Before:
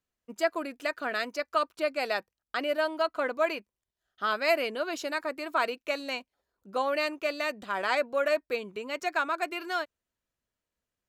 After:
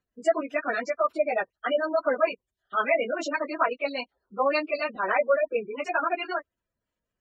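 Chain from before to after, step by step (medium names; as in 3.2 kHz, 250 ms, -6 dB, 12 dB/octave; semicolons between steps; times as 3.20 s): spectral gate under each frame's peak -15 dB strong; plain phase-vocoder stretch 0.65×; trim +8 dB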